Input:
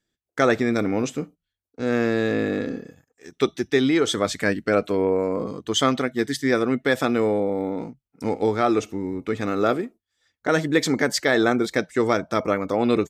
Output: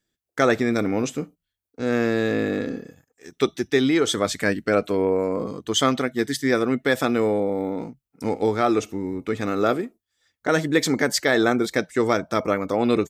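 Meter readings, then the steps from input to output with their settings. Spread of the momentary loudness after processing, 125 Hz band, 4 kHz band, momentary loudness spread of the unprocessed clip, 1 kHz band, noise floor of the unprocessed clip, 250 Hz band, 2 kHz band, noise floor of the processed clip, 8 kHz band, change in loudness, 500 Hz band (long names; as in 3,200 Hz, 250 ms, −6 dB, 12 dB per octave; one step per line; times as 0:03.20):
10 LU, 0.0 dB, +0.5 dB, 9 LU, 0.0 dB, −85 dBFS, 0.0 dB, 0.0 dB, −85 dBFS, +2.0 dB, 0.0 dB, 0.0 dB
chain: high-shelf EQ 9,700 Hz +6.5 dB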